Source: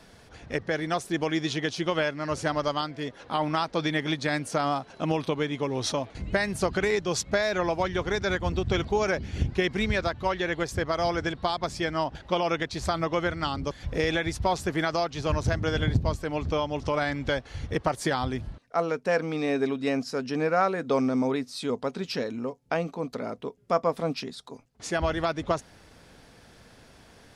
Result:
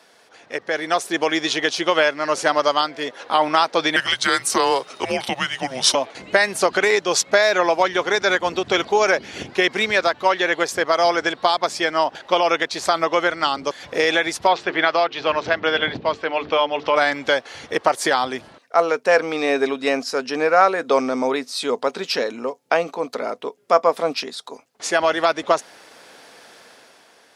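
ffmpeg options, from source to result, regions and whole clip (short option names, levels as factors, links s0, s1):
-filter_complex "[0:a]asettb=1/sr,asplit=3[s0][s1][s2];[s0]atrim=end=3.964[s3];[s1]atrim=start=3.96:end=5.95,asetpts=PTS-STARTPTS,afade=t=in:d=0.004:c=qsin,afade=t=out:st=1.986:d=0.004:c=qsin,highshelf=f=6800:g=11,afreqshift=-270[s4];[s2]atrim=start=5.946[s5];[s3][s4]acrossfade=d=0.004:c1=hsin:c2=qsin[s6];[s6][s5]acrossfade=d=0.004:c1=qsin:c2=hsin,asettb=1/sr,asplit=3[s7][s8][s9];[s7]atrim=end=14.474[s10];[s8]atrim=start=14.47:end=16.96,asetpts=PTS-STARTPTS,afade=t=in:d=0.004:c=qsin,afade=t=out:st=2.486:d=0.004:c=qsin,lowpass=f=3300:w=0.5412,lowpass=f=3300:w=1.3066,aemphasis=mode=production:type=75fm,bandreject=f=50:t=h:w=6,bandreject=f=100:t=h:w=6,bandreject=f=150:t=h:w=6,bandreject=f=200:t=h:w=6,bandreject=f=250:t=h:w=6,bandreject=f=300:t=h:w=6,bandreject=f=350:t=h:w=6,bandreject=f=400:t=h:w=6,bandreject=f=450:t=h:w=6[s11];[s9]atrim=start=16.956[s12];[s10][s11]acrossfade=d=0.004:c1=hsin:c2=qsin[s13];[s13][s12]acrossfade=d=0.004:c1=qsin:c2=hsin,dynaudnorm=f=170:g=9:m=2.82,highpass=450,volume=1.33"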